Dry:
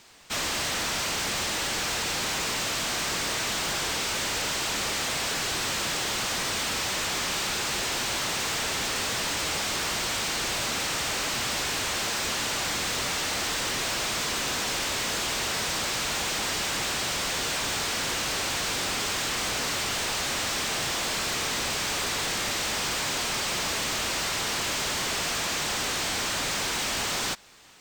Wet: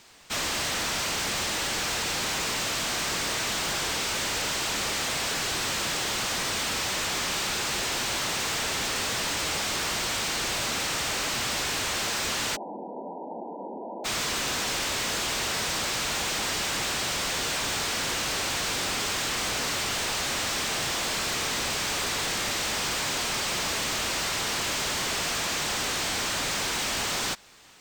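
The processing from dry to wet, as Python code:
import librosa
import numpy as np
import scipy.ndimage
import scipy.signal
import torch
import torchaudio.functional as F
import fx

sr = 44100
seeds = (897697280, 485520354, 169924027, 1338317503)

y = fx.brickwall_bandpass(x, sr, low_hz=180.0, high_hz=1000.0, at=(12.55, 14.04), fade=0.02)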